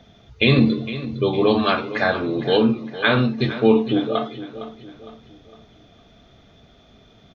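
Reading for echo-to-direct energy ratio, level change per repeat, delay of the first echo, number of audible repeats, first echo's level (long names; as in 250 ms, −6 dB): −13.0 dB, −7.5 dB, 459 ms, 3, −14.0 dB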